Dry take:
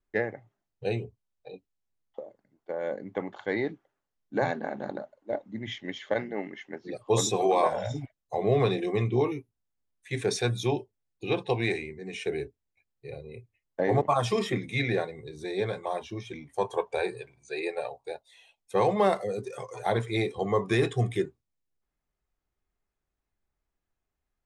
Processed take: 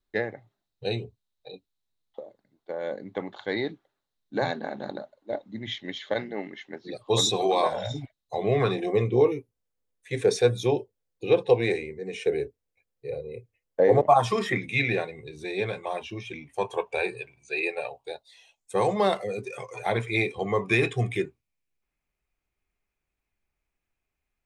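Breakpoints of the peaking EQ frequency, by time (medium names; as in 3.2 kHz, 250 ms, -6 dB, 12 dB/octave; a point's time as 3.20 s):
peaking EQ +12 dB 0.4 oct
8.37 s 3.9 kHz
8.96 s 490 Hz
13.97 s 490 Hz
14.64 s 2.6 kHz
17.92 s 2.6 kHz
18.81 s 9.4 kHz
19.22 s 2.4 kHz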